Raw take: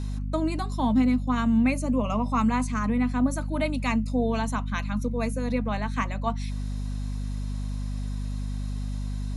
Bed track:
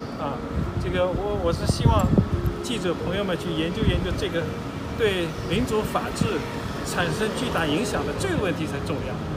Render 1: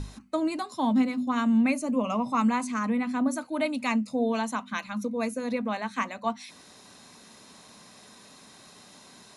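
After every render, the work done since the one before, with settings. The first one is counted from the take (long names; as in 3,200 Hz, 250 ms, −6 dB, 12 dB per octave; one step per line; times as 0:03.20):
mains-hum notches 50/100/150/200/250 Hz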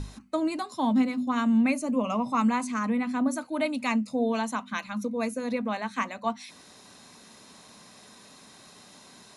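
no processing that can be heard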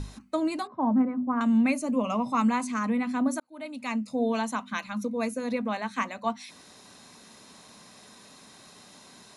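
0:00.67–0:01.41: low-pass filter 1,500 Hz 24 dB per octave
0:03.40–0:04.25: fade in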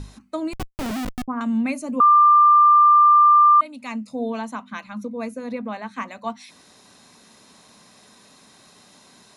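0:00.53–0:01.28: comparator with hysteresis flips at −25.5 dBFS
0:02.00–0:03.61: beep over 1,190 Hz −9.5 dBFS
0:04.30–0:06.08: high-shelf EQ 3,300 Hz −7.5 dB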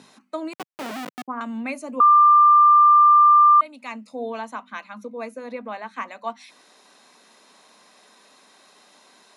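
high-pass filter 160 Hz 24 dB per octave
bass and treble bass −15 dB, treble −5 dB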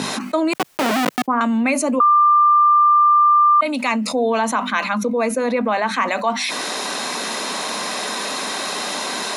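envelope flattener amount 70%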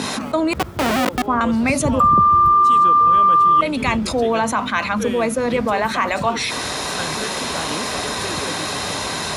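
mix in bed track −5.5 dB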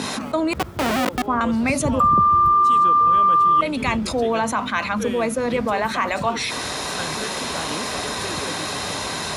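level −2.5 dB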